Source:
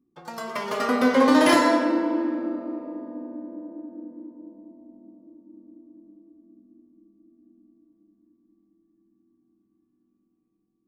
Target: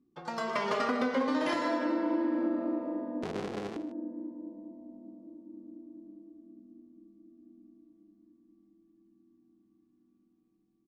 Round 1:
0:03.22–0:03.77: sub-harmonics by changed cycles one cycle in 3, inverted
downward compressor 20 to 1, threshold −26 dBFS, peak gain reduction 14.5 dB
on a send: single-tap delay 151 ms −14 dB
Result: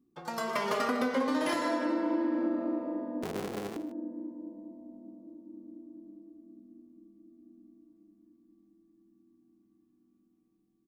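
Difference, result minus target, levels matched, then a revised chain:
8,000 Hz band +6.0 dB
0:03.22–0:03.77: sub-harmonics by changed cycles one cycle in 3, inverted
downward compressor 20 to 1, threshold −26 dBFS, peak gain reduction 14.5 dB
low-pass filter 5,700 Hz 12 dB per octave
on a send: single-tap delay 151 ms −14 dB

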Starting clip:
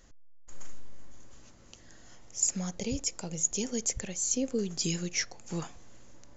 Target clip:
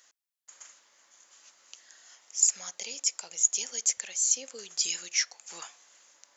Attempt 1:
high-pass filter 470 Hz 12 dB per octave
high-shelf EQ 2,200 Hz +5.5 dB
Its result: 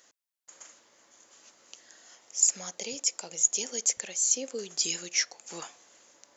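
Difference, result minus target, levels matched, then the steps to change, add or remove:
500 Hz band +9.5 dB
change: high-pass filter 960 Hz 12 dB per octave

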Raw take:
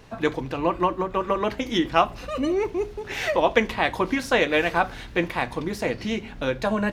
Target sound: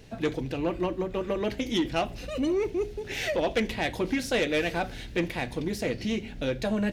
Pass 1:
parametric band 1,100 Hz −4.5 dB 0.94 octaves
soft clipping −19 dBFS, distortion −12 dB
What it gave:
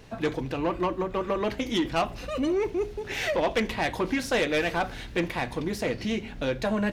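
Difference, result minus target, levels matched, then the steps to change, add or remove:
1,000 Hz band +3.5 dB
change: parametric band 1,100 Hz −14 dB 0.94 octaves

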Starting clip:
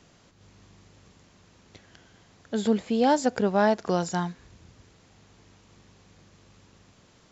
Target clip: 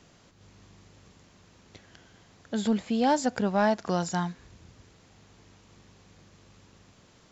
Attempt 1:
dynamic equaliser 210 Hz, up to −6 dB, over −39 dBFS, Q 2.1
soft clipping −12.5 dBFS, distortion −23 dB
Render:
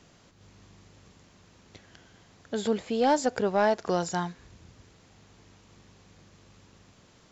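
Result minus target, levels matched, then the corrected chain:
250 Hz band −3.5 dB
dynamic equaliser 430 Hz, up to −6 dB, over −39 dBFS, Q 2.1
soft clipping −12.5 dBFS, distortion −25 dB

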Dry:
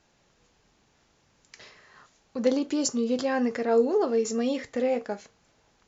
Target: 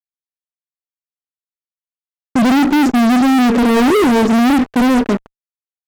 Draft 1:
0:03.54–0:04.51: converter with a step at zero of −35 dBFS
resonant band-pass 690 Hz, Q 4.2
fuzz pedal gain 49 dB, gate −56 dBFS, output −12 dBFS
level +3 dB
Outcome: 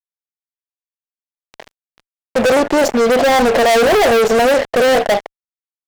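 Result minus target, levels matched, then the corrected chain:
250 Hz band −9.5 dB
0:03.54–0:04.51: converter with a step at zero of −35 dBFS
resonant band-pass 260 Hz, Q 4.2
fuzz pedal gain 49 dB, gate −56 dBFS, output −12 dBFS
level +3 dB

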